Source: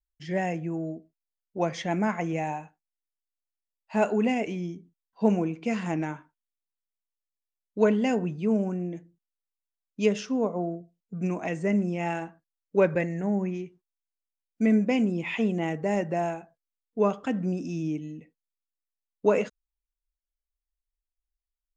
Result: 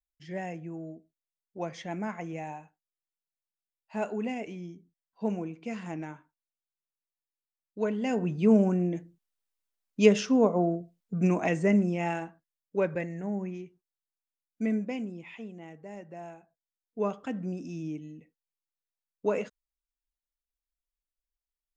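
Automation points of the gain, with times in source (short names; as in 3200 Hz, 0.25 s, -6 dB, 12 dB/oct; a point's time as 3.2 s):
7.92 s -8 dB
8.43 s +4 dB
11.4 s +4 dB
12.77 s -6 dB
14.64 s -6 dB
15.49 s -17 dB
16.04 s -17 dB
17.04 s -6 dB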